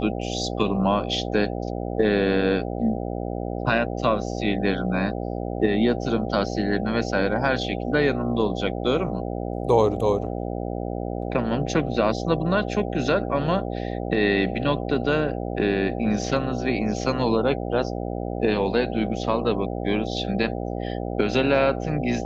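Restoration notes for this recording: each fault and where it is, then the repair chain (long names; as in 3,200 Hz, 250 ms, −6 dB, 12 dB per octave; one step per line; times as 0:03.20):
mains buzz 60 Hz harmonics 13 −29 dBFS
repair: hum removal 60 Hz, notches 13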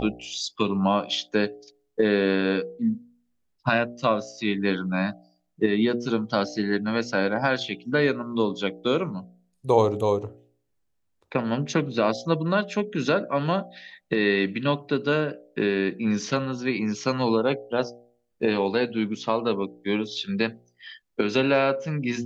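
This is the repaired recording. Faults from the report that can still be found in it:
none of them is left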